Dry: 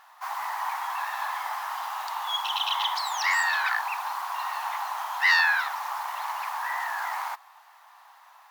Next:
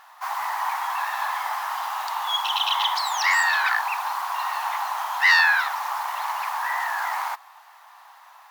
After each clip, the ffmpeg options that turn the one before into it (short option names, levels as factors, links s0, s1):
-af "acontrast=59,volume=0.794"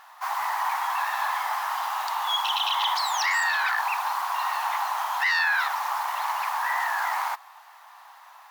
-af "alimiter=limit=0.15:level=0:latency=1:release=18"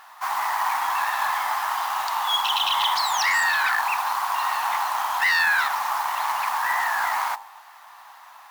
-af "bandreject=f=50.24:t=h:w=4,bandreject=f=100.48:t=h:w=4,bandreject=f=150.72:t=h:w=4,bandreject=f=200.96:t=h:w=4,bandreject=f=251.2:t=h:w=4,bandreject=f=301.44:t=h:w=4,bandreject=f=351.68:t=h:w=4,bandreject=f=401.92:t=h:w=4,bandreject=f=452.16:t=h:w=4,bandreject=f=502.4:t=h:w=4,bandreject=f=552.64:t=h:w=4,bandreject=f=602.88:t=h:w=4,bandreject=f=653.12:t=h:w=4,bandreject=f=703.36:t=h:w=4,bandreject=f=753.6:t=h:w=4,bandreject=f=803.84:t=h:w=4,bandreject=f=854.08:t=h:w=4,bandreject=f=904.32:t=h:w=4,bandreject=f=954.56:t=h:w=4,bandreject=f=1004.8:t=h:w=4,acrusher=bits=4:mode=log:mix=0:aa=0.000001,volume=1.41"